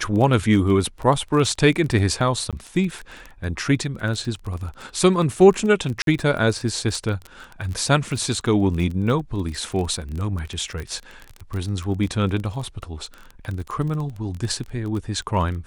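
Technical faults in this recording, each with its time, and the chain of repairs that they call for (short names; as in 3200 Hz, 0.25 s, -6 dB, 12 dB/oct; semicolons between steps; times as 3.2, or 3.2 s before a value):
crackle 20/s -27 dBFS
2.51–2.53 gap 17 ms
6.02–6.07 gap 52 ms
10.8 pop -19 dBFS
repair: de-click; interpolate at 2.51, 17 ms; interpolate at 6.02, 52 ms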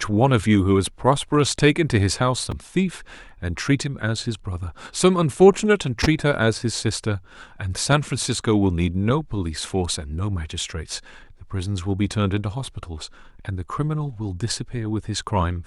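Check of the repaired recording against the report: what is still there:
none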